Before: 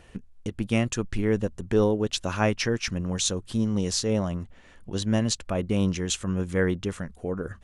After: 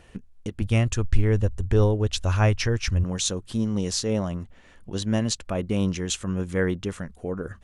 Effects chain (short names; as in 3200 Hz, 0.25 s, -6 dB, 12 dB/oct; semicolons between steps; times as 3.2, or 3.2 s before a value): 0.61–3.04 resonant low shelf 120 Hz +12.5 dB, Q 1.5